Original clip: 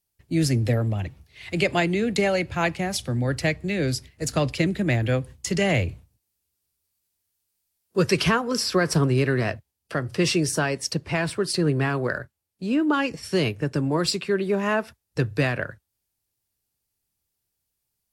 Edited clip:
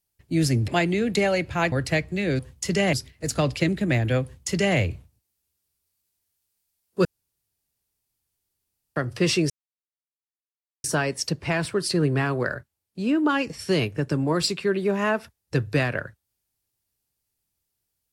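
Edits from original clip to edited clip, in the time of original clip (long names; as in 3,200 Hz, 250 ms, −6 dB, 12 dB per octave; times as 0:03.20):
0:00.68–0:01.69: remove
0:02.73–0:03.24: remove
0:05.21–0:05.75: duplicate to 0:03.91
0:08.03–0:09.94: fill with room tone
0:10.48: splice in silence 1.34 s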